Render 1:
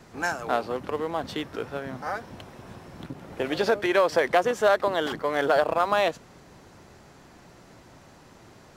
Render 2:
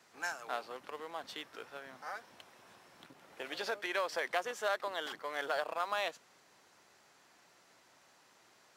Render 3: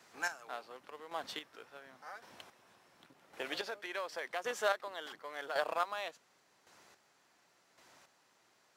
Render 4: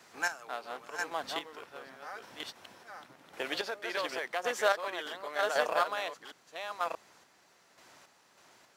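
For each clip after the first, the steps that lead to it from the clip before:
high-pass filter 1,400 Hz 6 dB per octave; level −7 dB
square-wave tremolo 0.9 Hz, depth 60%, duty 25%; level +2.5 dB
delay that plays each chunk backwards 632 ms, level −4 dB; level +4.5 dB

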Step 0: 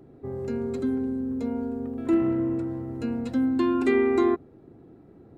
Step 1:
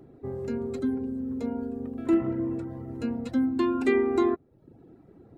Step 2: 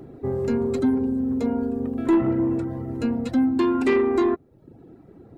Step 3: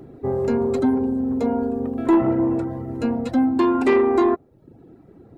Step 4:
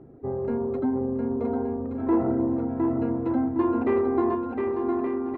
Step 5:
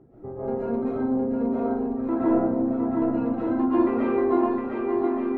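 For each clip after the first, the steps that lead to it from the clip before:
reverb reduction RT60 0.68 s
in parallel at +2 dB: speech leveller within 4 dB 2 s; on the sum: soft clipping −13.5 dBFS, distortion −14 dB
dynamic equaliser 740 Hz, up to +8 dB, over −38 dBFS, Q 0.91
low-pass filter 1,500 Hz 12 dB per octave; bouncing-ball delay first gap 710 ms, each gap 0.65×, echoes 5; level −6.5 dB
reverb reduction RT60 0.65 s; comb and all-pass reverb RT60 0.79 s, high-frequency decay 0.85×, pre-delay 95 ms, DRR −10 dB; level −6 dB

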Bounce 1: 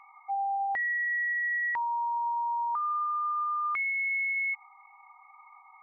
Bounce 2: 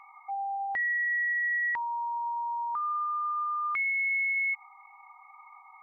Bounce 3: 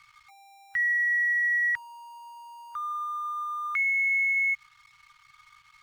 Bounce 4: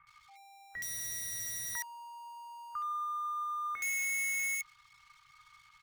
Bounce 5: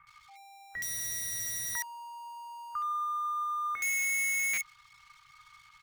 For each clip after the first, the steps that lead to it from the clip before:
dynamic equaliser 770 Hz, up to −5 dB, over −41 dBFS, Q 0.98; level +2 dB
dead-zone distortion −57.5 dBFS; Chebyshev band-stop filter 130–1,400 Hz, order 3; level +4.5 dB
in parallel at −3 dB: wrap-around overflow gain 25 dB; on the sum: multiband delay without the direct sound lows, highs 70 ms, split 1,900 Hz; level −7 dB
buffer that repeats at 0:04.53, samples 256, times 7; level +3.5 dB

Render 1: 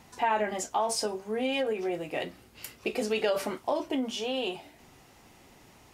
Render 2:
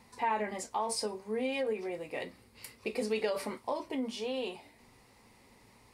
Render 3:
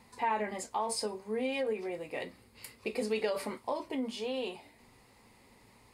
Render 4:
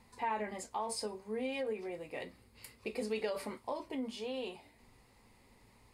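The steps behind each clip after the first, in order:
EQ curve with evenly spaced ripples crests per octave 0.93, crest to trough 7 dB; level −5.5 dB
notch filter 5,700 Hz, Q 12
low-shelf EQ 67 Hz +11 dB; level −4.5 dB

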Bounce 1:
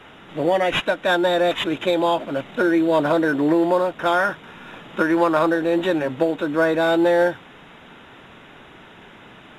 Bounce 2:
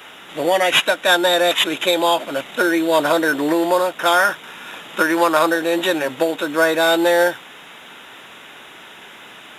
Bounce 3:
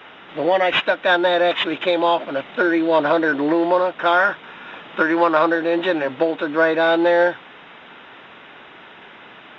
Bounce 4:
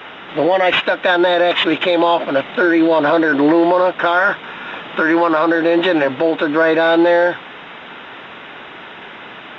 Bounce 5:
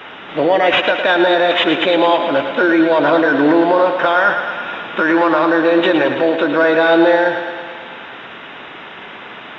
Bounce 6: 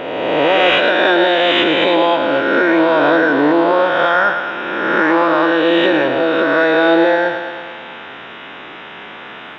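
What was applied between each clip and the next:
RIAA equalisation recording; level +4 dB
Gaussian smoothing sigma 2.5 samples
brickwall limiter −13.5 dBFS, peak gain reduction 10 dB; level +8 dB
feedback echo with a high-pass in the loop 109 ms, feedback 69%, high-pass 170 Hz, level −8 dB
peak hold with a rise ahead of every peak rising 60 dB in 1.87 s; level −3 dB

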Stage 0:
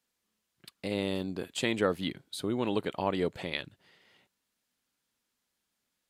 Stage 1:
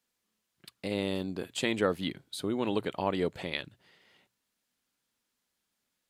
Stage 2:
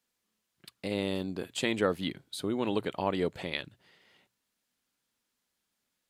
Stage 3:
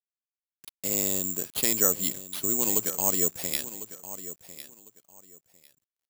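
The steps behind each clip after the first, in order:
mains-hum notches 60/120 Hz
no processing that can be heard
bit reduction 9 bits; repeating echo 1,051 ms, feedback 21%, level −14 dB; bad sample-rate conversion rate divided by 6×, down none, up zero stuff; level −3 dB

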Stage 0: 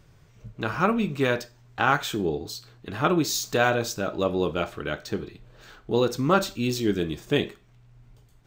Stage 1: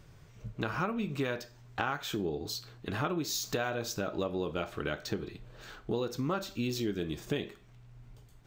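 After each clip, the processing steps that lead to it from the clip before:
dynamic equaliser 8,400 Hz, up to −5 dB, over −55 dBFS, Q 3
downward compressor 6 to 1, threshold −30 dBFS, peak gain reduction 14.5 dB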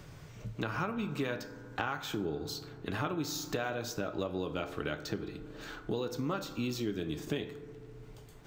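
feedback delay network reverb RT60 1.9 s, low-frequency decay 1×, high-frequency decay 0.25×, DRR 12 dB
multiband upward and downward compressor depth 40%
level −2 dB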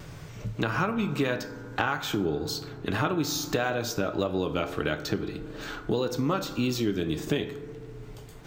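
pitch vibrato 1.7 Hz 33 cents
level +7.5 dB

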